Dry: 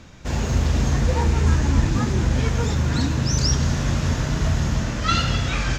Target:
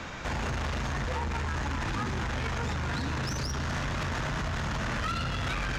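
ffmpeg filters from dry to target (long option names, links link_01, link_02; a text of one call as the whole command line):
ffmpeg -i in.wav -filter_complex "[0:a]acrossover=split=270|590|6700[link_01][link_02][link_03][link_04];[link_01]acompressor=threshold=-22dB:ratio=4[link_05];[link_02]acompressor=threshold=-44dB:ratio=4[link_06];[link_03]acompressor=threshold=-36dB:ratio=4[link_07];[link_04]acompressor=threshold=-55dB:ratio=4[link_08];[link_05][link_06][link_07][link_08]amix=inputs=4:normalize=0,asplit=2[link_09][link_10];[link_10]asoftclip=type=hard:threshold=-31dB,volume=-3.5dB[link_11];[link_09][link_11]amix=inputs=2:normalize=0,alimiter=limit=-21.5dB:level=0:latency=1:release=29,equalizer=frequency=1300:width=0.36:gain=13,asoftclip=type=tanh:threshold=-23.5dB,volume=-3.5dB" out.wav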